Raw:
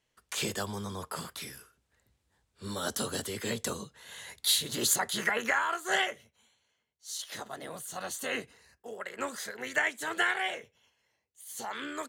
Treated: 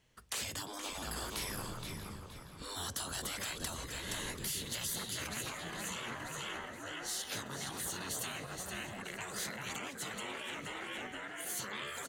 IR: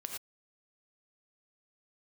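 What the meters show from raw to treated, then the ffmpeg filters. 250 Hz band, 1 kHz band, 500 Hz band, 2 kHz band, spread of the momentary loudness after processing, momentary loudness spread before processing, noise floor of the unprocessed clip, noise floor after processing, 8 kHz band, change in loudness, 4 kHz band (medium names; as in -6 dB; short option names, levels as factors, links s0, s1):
-5.5 dB, -8.0 dB, -8.5 dB, -9.5 dB, 5 LU, 17 LU, -79 dBFS, -50 dBFS, -4.5 dB, -7.5 dB, -5.5 dB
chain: -filter_complex "[0:a]asplit=2[s0][s1];[s1]asplit=4[s2][s3][s4][s5];[s2]adelay=471,afreqshift=-41,volume=0.299[s6];[s3]adelay=942,afreqshift=-82,volume=0.0989[s7];[s4]adelay=1413,afreqshift=-123,volume=0.0324[s8];[s5]adelay=1884,afreqshift=-164,volume=0.0107[s9];[s6][s7][s8][s9]amix=inputs=4:normalize=0[s10];[s0][s10]amix=inputs=2:normalize=0,acompressor=threshold=0.0126:ratio=5,asplit=2[s11][s12];[s12]adelay=637,lowpass=f=3800:p=1,volume=0.2,asplit=2[s13][s14];[s14]adelay=637,lowpass=f=3800:p=1,volume=0.49,asplit=2[s15][s16];[s16]adelay=637,lowpass=f=3800:p=1,volume=0.49,asplit=2[s17][s18];[s18]adelay=637,lowpass=f=3800:p=1,volume=0.49,asplit=2[s19][s20];[s20]adelay=637,lowpass=f=3800:p=1,volume=0.49[s21];[s13][s15][s17][s19][s21]amix=inputs=5:normalize=0[s22];[s11][s22]amix=inputs=2:normalize=0,afftfilt=real='re*lt(hypot(re,im),0.02)':imag='im*lt(hypot(re,im),0.02)':win_size=1024:overlap=0.75,bass=f=250:g=7,treble=f=4000:g=-1,volume=1.88"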